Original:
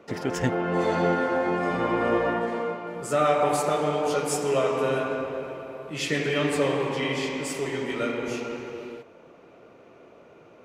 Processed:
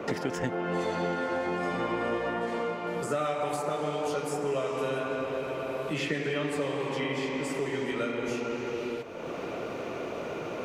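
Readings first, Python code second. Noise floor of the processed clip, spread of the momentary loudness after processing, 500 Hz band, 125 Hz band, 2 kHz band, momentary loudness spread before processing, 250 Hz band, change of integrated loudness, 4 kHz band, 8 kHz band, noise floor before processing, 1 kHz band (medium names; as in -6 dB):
-37 dBFS, 6 LU, -4.5 dB, -5.0 dB, -4.0 dB, 11 LU, -4.0 dB, -5.5 dB, -4.5 dB, -8.0 dB, -52 dBFS, -5.5 dB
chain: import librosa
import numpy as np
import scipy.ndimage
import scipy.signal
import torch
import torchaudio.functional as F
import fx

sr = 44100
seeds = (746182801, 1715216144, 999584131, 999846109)

y = fx.band_squash(x, sr, depth_pct=100)
y = y * 10.0 ** (-6.0 / 20.0)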